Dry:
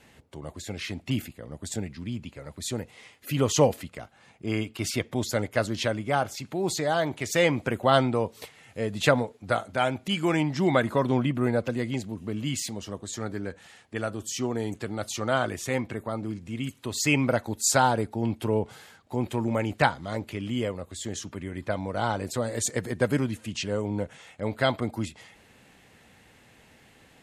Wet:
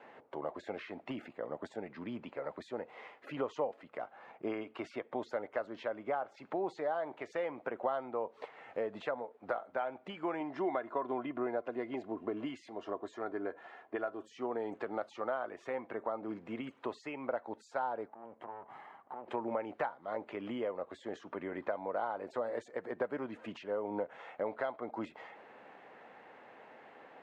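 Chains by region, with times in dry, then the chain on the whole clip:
10.40–14.22 s: comb 2.9 ms, depth 46% + tape noise reduction on one side only decoder only
18.08–19.28 s: comb filter that takes the minimum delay 1 ms + peaking EQ 5.2 kHz -13.5 dB 1.4 oct + compression, threshold -46 dBFS
whole clip: high-pass 560 Hz 12 dB/octave; compression 5:1, threshold -42 dBFS; low-pass 1.1 kHz 12 dB/octave; trim +9.5 dB

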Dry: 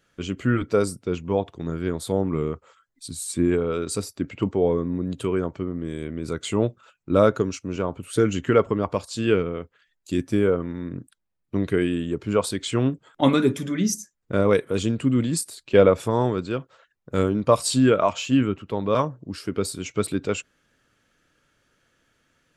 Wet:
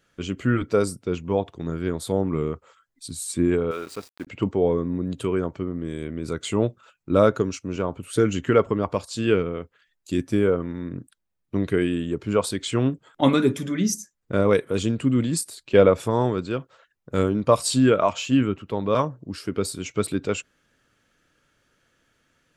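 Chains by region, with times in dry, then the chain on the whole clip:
3.71–4.27 s: low-pass 1.8 kHz + tilt EQ +4.5 dB/octave + small samples zeroed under -42 dBFS
whole clip: none

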